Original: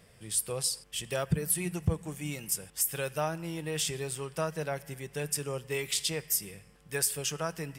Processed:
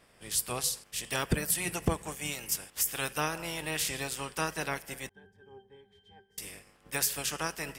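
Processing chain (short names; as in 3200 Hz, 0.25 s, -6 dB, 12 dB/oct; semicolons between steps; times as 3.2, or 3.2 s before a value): spectral limiter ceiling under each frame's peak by 18 dB; 5.09–6.38 octave resonator G, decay 0.24 s; mismatched tape noise reduction decoder only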